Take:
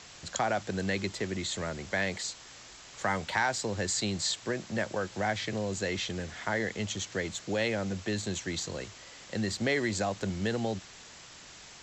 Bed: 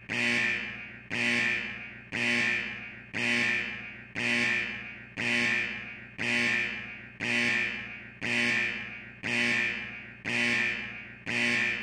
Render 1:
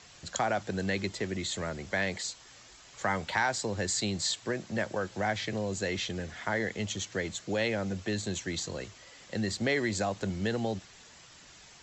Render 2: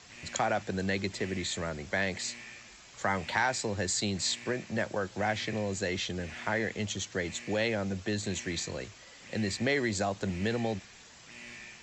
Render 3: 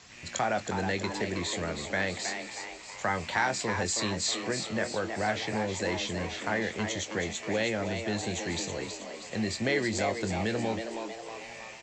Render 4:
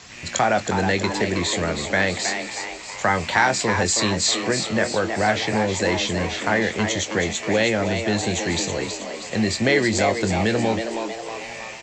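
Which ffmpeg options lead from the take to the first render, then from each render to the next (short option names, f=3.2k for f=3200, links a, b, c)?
-af "afftdn=nr=6:nf=-50"
-filter_complex "[1:a]volume=-20.5dB[a];[0:a][a]amix=inputs=2:normalize=0"
-filter_complex "[0:a]asplit=2[a][b];[b]adelay=23,volume=-11dB[c];[a][c]amix=inputs=2:normalize=0,asplit=8[d][e][f][g][h][i][j][k];[e]adelay=319,afreqshift=110,volume=-7dB[l];[f]adelay=638,afreqshift=220,volume=-12.4dB[m];[g]adelay=957,afreqshift=330,volume=-17.7dB[n];[h]adelay=1276,afreqshift=440,volume=-23.1dB[o];[i]adelay=1595,afreqshift=550,volume=-28.4dB[p];[j]adelay=1914,afreqshift=660,volume=-33.8dB[q];[k]adelay=2233,afreqshift=770,volume=-39.1dB[r];[d][l][m][n][o][p][q][r]amix=inputs=8:normalize=0"
-af "volume=9.5dB"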